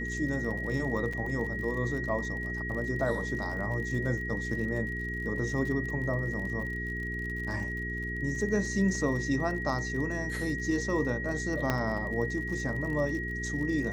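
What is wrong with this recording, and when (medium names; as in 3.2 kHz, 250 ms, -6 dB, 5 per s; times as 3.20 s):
crackle 50 per s -38 dBFS
hum 60 Hz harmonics 7 -37 dBFS
whine 1.9 kHz -35 dBFS
1.13 s: dropout 4.4 ms
11.70 s: pop -13 dBFS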